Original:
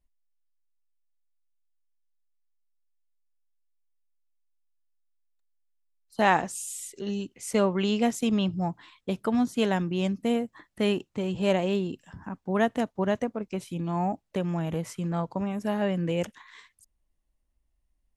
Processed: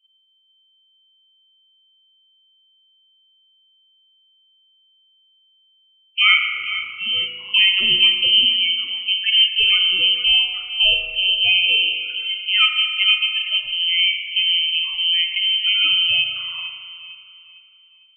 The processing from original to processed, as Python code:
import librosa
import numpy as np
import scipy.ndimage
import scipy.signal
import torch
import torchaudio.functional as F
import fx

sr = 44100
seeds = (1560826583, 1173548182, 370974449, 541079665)

y = fx.dynamic_eq(x, sr, hz=960.0, q=7.3, threshold_db=-49.0, ratio=4.0, max_db=5)
y = fx.lpc_vocoder(y, sr, seeds[0], excitation='pitch_kept', order=10)
y = fx.spec_topn(y, sr, count=16)
y = fx.echo_wet_lowpass(y, sr, ms=454, feedback_pct=35, hz=1800.0, wet_db=-12)
y = fx.freq_invert(y, sr, carrier_hz=3100)
y = fx.rev_spring(y, sr, rt60_s=1.8, pass_ms=(36,), chirp_ms=35, drr_db=4.0)
y = y * librosa.db_to_amplitude(6.0)